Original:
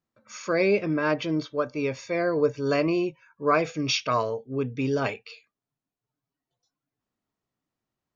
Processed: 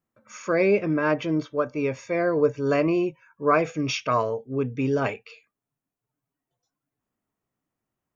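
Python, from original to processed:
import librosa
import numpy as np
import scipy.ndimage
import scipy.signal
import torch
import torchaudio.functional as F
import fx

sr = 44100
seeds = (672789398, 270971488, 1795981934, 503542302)

y = fx.peak_eq(x, sr, hz=4300.0, db=-10.0, octaves=0.84)
y = y * librosa.db_to_amplitude(2.0)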